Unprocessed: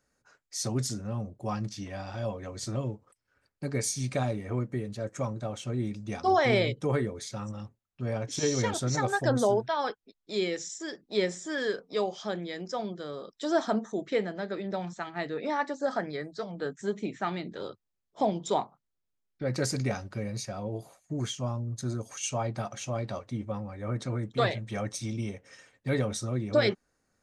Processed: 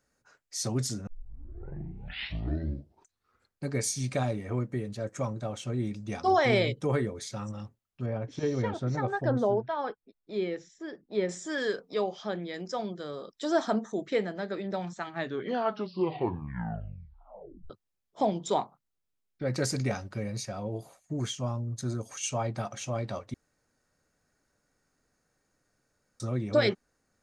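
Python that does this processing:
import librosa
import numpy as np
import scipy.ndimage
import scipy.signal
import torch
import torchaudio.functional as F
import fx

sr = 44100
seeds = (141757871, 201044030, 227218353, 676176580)

y = fx.spacing_loss(x, sr, db_at_10k=31, at=(8.06, 11.29))
y = fx.air_absorb(y, sr, metres=110.0, at=(11.94, 12.54))
y = fx.edit(y, sr, fx.tape_start(start_s=1.07, length_s=2.61),
    fx.tape_stop(start_s=15.07, length_s=2.63),
    fx.room_tone_fill(start_s=23.34, length_s=2.86), tone=tone)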